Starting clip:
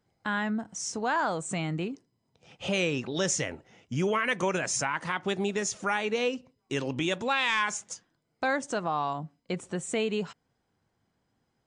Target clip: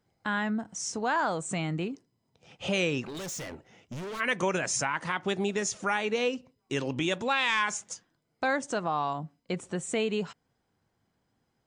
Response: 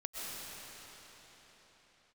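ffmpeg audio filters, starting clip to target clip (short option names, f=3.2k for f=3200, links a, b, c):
-filter_complex "[0:a]asplit=3[a][b][c];[a]afade=t=out:st=3.03:d=0.02[d];[b]volume=36dB,asoftclip=hard,volume=-36dB,afade=t=in:st=3.03:d=0.02,afade=t=out:st=4.19:d=0.02[e];[c]afade=t=in:st=4.19:d=0.02[f];[d][e][f]amix=inputs=3:normalize=0"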